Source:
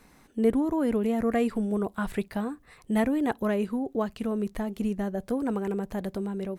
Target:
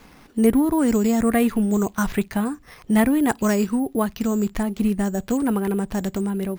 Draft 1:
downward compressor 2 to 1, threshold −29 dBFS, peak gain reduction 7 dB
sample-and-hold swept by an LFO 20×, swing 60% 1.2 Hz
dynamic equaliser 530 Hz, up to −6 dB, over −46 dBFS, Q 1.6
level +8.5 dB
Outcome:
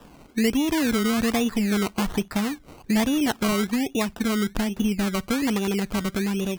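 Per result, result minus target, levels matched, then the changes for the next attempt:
sample-and-hold swept by an LFO: distortion +13 dB; downward compressor: peak gain reduction +7 dB
change: sample-and-hold swept by an LFO 5×, swing 60% 1.2 Hz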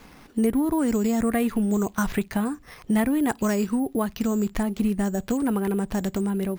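downward compressor: peak gain reduction +7 dB
remove: downward compressor 2 to 1, threshold −29 dBFS, peak gain reduction 7 dB

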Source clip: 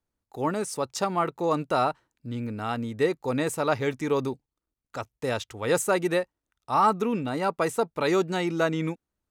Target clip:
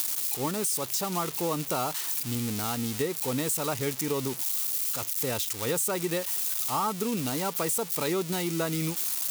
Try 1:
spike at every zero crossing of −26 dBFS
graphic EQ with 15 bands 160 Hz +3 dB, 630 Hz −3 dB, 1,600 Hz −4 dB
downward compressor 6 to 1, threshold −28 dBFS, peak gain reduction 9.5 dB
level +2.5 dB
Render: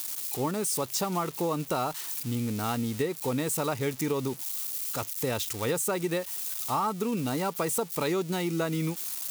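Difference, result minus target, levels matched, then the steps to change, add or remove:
spike at every zero crossing: distortion −8 dB
change: spike at every zero crossing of −17.5 dBFS

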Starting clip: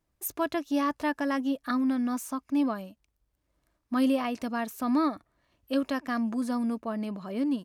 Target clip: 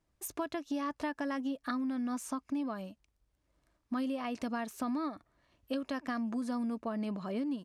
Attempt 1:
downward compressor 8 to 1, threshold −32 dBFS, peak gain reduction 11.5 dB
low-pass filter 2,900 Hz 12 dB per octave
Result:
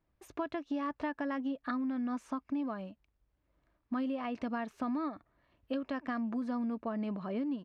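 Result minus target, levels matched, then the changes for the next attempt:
8,000 Hz band −17.0 dB
change: low-pass filter 9,500 Hz 12 dB per octave

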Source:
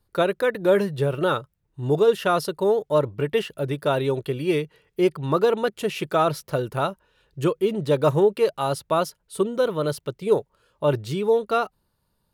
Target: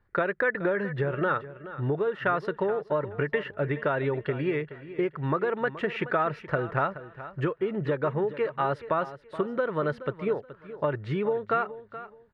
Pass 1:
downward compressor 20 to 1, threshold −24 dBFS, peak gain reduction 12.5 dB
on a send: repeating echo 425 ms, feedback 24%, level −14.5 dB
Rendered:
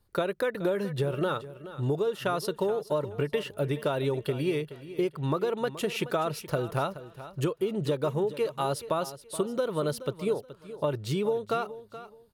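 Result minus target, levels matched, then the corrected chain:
2,000 Hz band −6.5 dB
downward compressor 20 to 1, threshold −24 dBFS, peak gain reduction 12.5 dB
low-pass with resonance 1,800 Hz, resonance Q 3.7
on a send: repeating echo 425 ms, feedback 24%, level −14.5 dB

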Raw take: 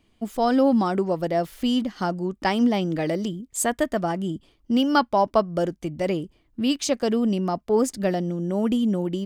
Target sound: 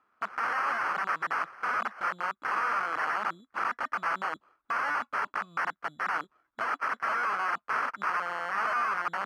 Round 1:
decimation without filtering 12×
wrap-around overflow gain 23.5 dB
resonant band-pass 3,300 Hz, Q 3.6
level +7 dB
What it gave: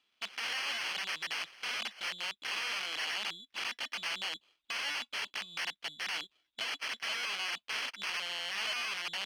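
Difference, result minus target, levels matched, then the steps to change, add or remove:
4,000 Hz band +19.5 dB
change: resonant band-pass 1,300 Hz, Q 3.6

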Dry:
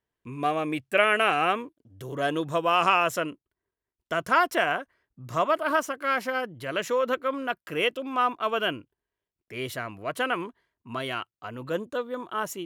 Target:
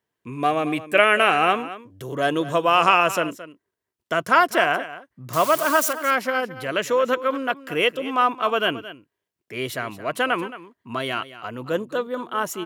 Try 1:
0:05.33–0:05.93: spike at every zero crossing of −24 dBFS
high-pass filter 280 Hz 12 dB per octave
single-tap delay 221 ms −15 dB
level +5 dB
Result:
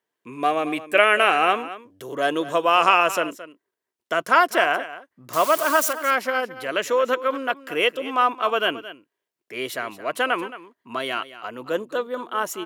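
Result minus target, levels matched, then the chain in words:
125 Hz band −9.5 dB
0:05.33–0:05.93: spike at every zero crossing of −24 dBFS
high-pass filter 110 Hz 12 dB per octave
single-tap delay 221 ms −15 dB
level +5 dB

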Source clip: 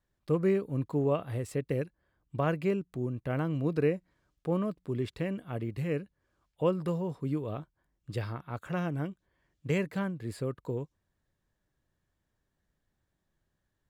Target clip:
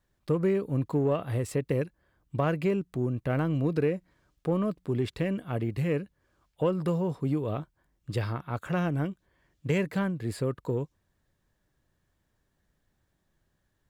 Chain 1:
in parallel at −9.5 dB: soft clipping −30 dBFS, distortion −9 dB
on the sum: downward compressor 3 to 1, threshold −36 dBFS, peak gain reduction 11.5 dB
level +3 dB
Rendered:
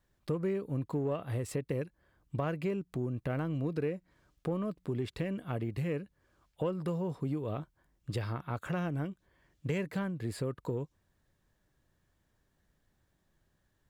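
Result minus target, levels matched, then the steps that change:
downward compressor: peak gain reduction +7 dB
change: downward compressor 3 to 1, threshold −25.5 dBFS, peak gain reduction 4.5 dB

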